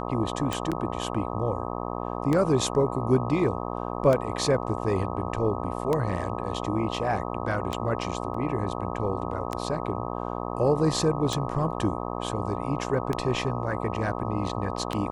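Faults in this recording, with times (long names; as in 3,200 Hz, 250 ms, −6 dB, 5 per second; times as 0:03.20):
mains buzz 60 Hz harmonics 21 −32 dBFS
scratch tick 33 1/3 rpm
0:00.71–0:00.72: drop-out 7 ms
0:08.34: drop-out 4.1 ms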